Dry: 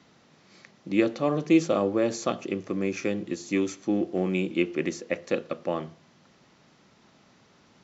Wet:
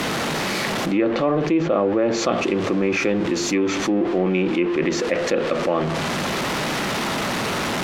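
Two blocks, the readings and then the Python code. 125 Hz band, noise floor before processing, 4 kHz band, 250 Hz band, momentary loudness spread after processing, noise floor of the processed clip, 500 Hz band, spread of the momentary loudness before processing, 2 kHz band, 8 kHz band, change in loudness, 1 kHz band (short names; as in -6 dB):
+8.0 dB, -60 dBFS, +15.5 dB, +6.0 dB, 3 LU, -24 dBFS, +7.5 dB, 10 LU, +11.5 dB, n/a, +6.0 dB, +12.0 dB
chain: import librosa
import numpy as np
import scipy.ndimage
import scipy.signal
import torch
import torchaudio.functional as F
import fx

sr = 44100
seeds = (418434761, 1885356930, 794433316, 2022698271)

y = x + 0.5 * 10.0 ** (-35.0 / 20.0) * np.sign(x)
y = fx.env_lowpass_down(y, sr, base_hz=2400.0, full_db=-19.5)
y = fx.bass_treble(y, sr, bass_db=-5, treble_db=-7)
y = fx.env_flatten(y, sr, amount_pct=70)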